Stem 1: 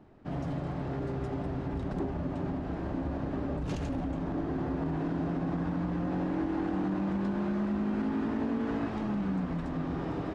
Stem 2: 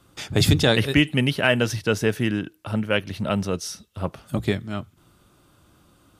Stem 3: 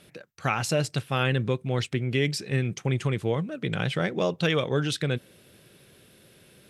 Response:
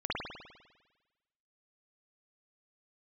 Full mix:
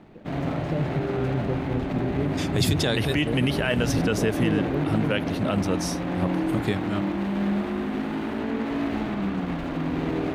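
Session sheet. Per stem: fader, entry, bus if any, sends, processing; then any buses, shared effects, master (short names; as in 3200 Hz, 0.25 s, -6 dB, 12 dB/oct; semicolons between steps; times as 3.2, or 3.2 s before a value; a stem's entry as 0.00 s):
+1.5 dB, 0.00 s, send -8.5 dB, median filter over 41 samples; EQ curve 120 Hz 0 dB, 3500 Hz +12 dB, 5200 Hz +6 dB; limiter -24 dBFS, peak gain reduction 6.5 dB
-0.5 dB, 2.20 s, no send, dry
+2.0 dB, 0.00 s, no send, band-pass 220 Hz, Q 1.3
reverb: on, RT60 1.2 s, pre-delay 50 ms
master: limiter -12 dBFS, peak gain reduction 8 dB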